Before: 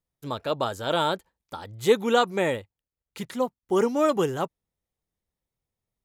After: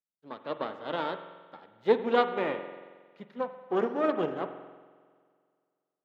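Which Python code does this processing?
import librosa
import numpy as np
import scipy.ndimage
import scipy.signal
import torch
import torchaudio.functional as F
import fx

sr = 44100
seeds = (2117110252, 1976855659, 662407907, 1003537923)

y = np.where(x < 0.0, 10.0 ** (-12.0 / 20.0) * x, x)
y = scipy.signal.sosfilt(scipy.signal.butter(4, 170.0, 'highpass', fs=sr, output='sos'), y)
y = fx.air_absorb(y, sr, metres=320.0)
y = fx.rev_spring(y, sr, rt60_s=2.1, pass_ms=(45,), chirp_ms=70, drr_db=5.0)
y = fx.upward_expand(y, sr, threshold_db=-46.0, expansion=1.5)
y = y * librosa.db_to_amplitude(1.5)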